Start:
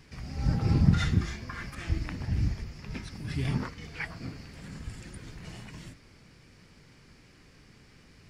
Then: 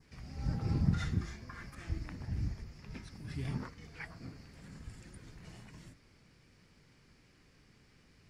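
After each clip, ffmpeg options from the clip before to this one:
ffmpeg -i in.wav -af "adynamicequalizer=threshold=0.00126:dfrequency=3000:dqfactor=1.5:tfrequency=3000:tqfactor=1.5:attack=5:release=100:ratio=0.375:range=2.5:mode=cutabove:tftype=bell,volume=-8dB" out.wav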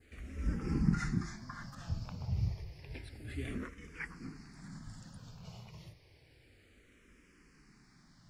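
ffmpeg -i in.wav -filter_complex "[0:a]asplit=2[link_01][link_02];[link_02]afreqshift=-0.3[link_03];[link_01][link_03]amix=inputs=2:normalize=1,volume=4dB" out.wav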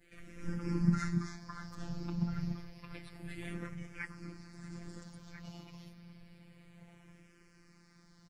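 ffmpeg -i in.wav -filter_complex "[0:a]asplit=2[link_01][link_02];[link_02]adelay=1341,volume=-7dB,highshelf=frequency=4000:gain=-30.2[link_03];[link_01][link_03]amix=inputs=2:normalize=0,afftfilt=real='hypot(re,im)*cos(PI*b)':imag='0':win_size=1024:overlap=0.75,volume=3dB" out.wav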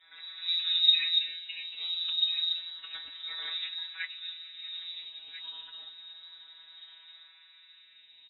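ffmpeg -i in.wav -af "lowpass=frequency=3300:width_type=q:width=0.5098,lowpass=frequency=3300:width_type=q:width=0.6013,lowpass=frequency=3300:width_type=q:width=0.9,lowpass=frequency=3300:width_type=q:width=2.563,afreqshift=-3900,volume=5.5dB" out.wav

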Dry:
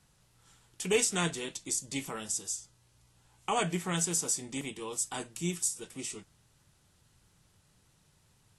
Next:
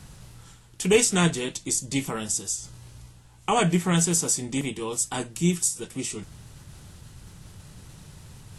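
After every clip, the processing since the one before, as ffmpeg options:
ffmpeg -i in.wav -af "lowshelf=frequency=250:gain=8,areverse,acompressor=mode=upward:threshold=-41dB:ratio=2.5,areverse,volume=6.5dB" out.wav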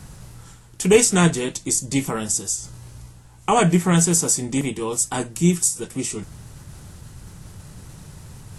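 ffmpeg -i in.wav -af "equalizer=frequency=3300:width_type=o:width=1.2:gain=-5,volume=5.5dB" out.wav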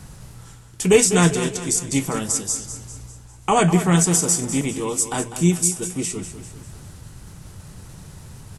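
ffmpeg -i in.wav -af "aecho=1:1:199|398|597|796|995:0.266|0.13|0.0639|0.0313|0.0153" out.wav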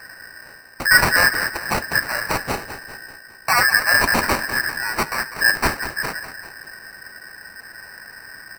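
ffmpeg -i in.wav -af "afftfilt=real='real(if(lt(b,272),68*(eq(floor(b/68),0)*2+eq(floor(b/68),1)*0+eq(floor(b/68),2)*3+eq(floor(b/68),3)*1)+mod(b,68),b),0)':imag='imag(if(lt(b,272),68*(eq(floor(b/68),0)*2+eq(floor(b/68),1)*0+eq(floor(b/68),2)*3+eq(floor(b/68),3)*1)+mod(b,68),b),0)':win_size=2048:overlap=0.75,acrusher=samples=13:mix=1:aa=0.000001" out.wav

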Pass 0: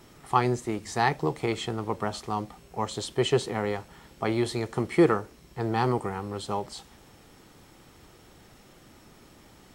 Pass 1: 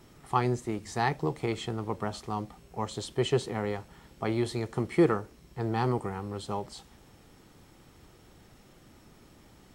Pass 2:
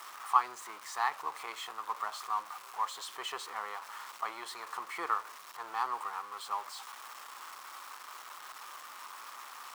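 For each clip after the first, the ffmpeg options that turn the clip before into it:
ffmpeg -i in.wav -af "lowshelf=frequency=280:gain=4.5,volume=-4.5dB" out.wav
ffmpeg -i in.wav -af "aeval=exprs='val(0)+0.5*0.0168*sgn(val(0))':channel_layout=same,highpass=frequency=1100:width_type=q:width=4.6,volume=-7.5dB" out.wav

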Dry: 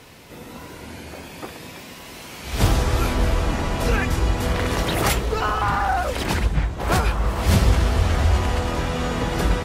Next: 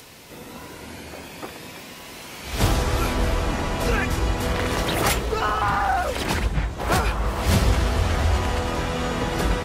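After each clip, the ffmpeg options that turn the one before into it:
ffmpeg -i in.wav -filter_complex "[0:a]lowshelf=frequency=190:gain=-3.5,acrossover=split=3700[link_01][link_02];[link_02]acompressor=mode=upward:threshold=-44dB:ratio=2.5[link_03];[link_01][link_03]amix=inputs=2:normalize=0" out.wav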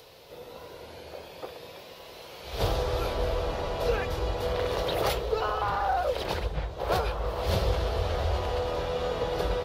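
ffmpeg -i in.wav -af "equalizer=frequency=250:width_type=o:width=1:gain=-11,equalizer=frequency=500:width_type=o:width=1:gain=11,equalizer=frequency=2000:width_type=o:width=1:gain=-5,equalizer=frequency=4000:width_type=o:width=1:gain=6,equalizer=frequency=8000:width_type=o:width=1:gain=-11,volume=-7.5dB" out.wav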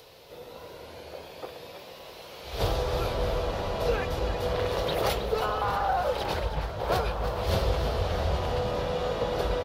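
ffmpeg -i in.wav -filter_complex "[0:a]asplit=8[link_01][link_02][link_03][link_04][link_05][link_06][link_07][link_08];[link_02]adelay=318,afreqshift=50,volume=-11dB[link_09];[link_03]adelay=636,afreqshift=100,volume=-15.4dB[link_10];[link_04]adelay=954,afreqshift=150,volume=-19.9dB[link_11];[link_05]adelay=1272,afreqshift=200,volume=-24.3dB[link_12];[link_06]adelay=1590,afreqshift=250,volume=-28.7dB[link_13];[link_07]adelay=1908,afreqshift=300,volume=-33.2dB[link_14];[link_08]adelay=2226,afreqshift=350,volume=-37.6dB[link_15];[link_01][link_09][link_10][link_11][link_12][link_13][link_14][link_15]amix=inputs=8:normalize=0" out.wav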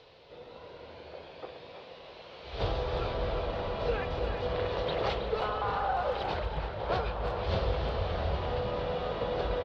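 ffmpeg -i in.wav -filter_complex "[0:a]lowpass=frequency=4300:width=0.5412,lowpass=frequency=4300:width=1.3066,asplit=2[link_01][link_02];[link_02]adelay=350,highpass=300,lowpass=3400,asoftclip=type=hard:threshold=-21dB,volume=-8dB[link_03];[link_01][link_03]amix=inputs=2:normalize=0,volume=-4dB" out.wav

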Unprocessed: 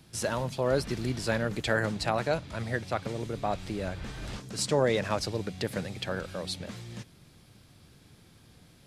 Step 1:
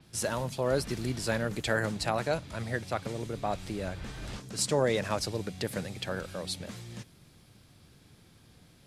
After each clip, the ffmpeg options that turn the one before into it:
ffmpeg -i in.wav -af "adynamicequalizer=threshold=0.00398:dfrequency=6400:dqfactor=0.7:tfrequency=6400:tqfactor=0.7:attack=5:release=100:ratio=0.375:range=3:mode=boostabove:tftype=highshelf,volume=-1.5dB" out.wav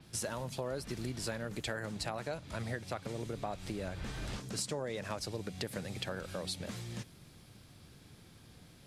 ffmpeg -i in.wav -af "acompressor=threshold=-36dB:ratio=6,volume=1dB" out.wav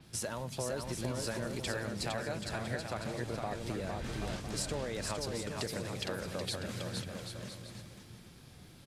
ffmpeg -i in.wav -af "aecho=1:1:460|782|1007|1165|1276:0.631|0.398|0.251|0.158|0.1" out.wav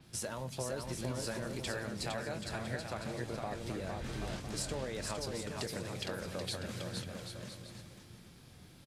ffmpeg -i in.wav -filter_complex "[0:a]asplit=2[link_01][link_02];[link_02]adelay=23,volume=-12.5dB[link_03];[link_01][link_03]amix=inputs=2:normalize=0,volume=-2dB" out.wav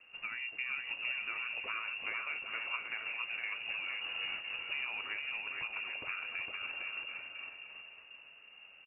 ffmpeg -i in.wav -af "lowpass=frequency=2500:width_type=q:width=0.5098,lowpass=frequency=2500:width_type=q:width=0.6013,lowpass=frequency=2500:width_type=q:width=0.9,lowpass=frequency=2500:width_type=q:width=2.563,afreqshift=-2900" out.wav

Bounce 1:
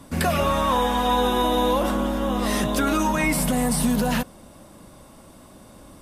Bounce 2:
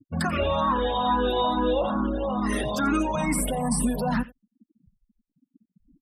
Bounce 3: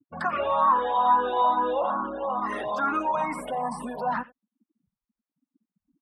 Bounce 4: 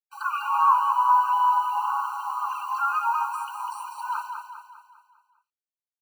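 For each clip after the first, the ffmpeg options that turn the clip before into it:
ffmpeg -i in.wav -filter_complex "[0:a]afftfilt=real='re*gte(hypot(re,im),0.0398)':imag='im*gte(hypot(re,im),0.0398)':win_size=1024:overlap=0.75,aecho=1:1:87:0.1,asplit=2[link_01][link_02];[link_02]afreqshift=2.3[link_03];[link_01][link_03]amix=inputs=2:normalize=1" out.wav
ffmpeg -i in.wav -af "bandpass=frequency=1000:width_type=q:width=1.6:csg=0,volume=5dB" out.wav
ffmpeg -i in.wav -filter_complex "[0:a]acrusher=bits=7:mix=0:aa=0.000001,asplit=2[link_01][link_02];[link_02]aecho=0:1:200|400|600|800|1000|1200:0.501|0.241|0.115|0.0554|0.0266|0.0128[link_03];[link_01][link_03]amix=inputs=2:normalize=0,afftfilt=real='re*eq(mod(floor(b*sr/1024/780),2),1)':imag='im*eq(mod(floor(b*sr/1024/780),2),1)':win_size=1024:overlap=0.75,volume=1.5dB" out.wav

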